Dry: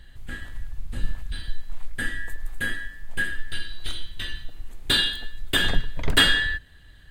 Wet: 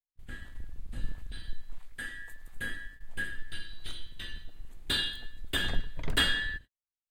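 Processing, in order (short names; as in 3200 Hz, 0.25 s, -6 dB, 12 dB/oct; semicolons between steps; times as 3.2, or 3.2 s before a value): octaver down 2 oct, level -1 dB; gate -35 dBFS, range -56 dB; 1.78–2.54 low shelf 480 Hz -8 dB; gain -9 dB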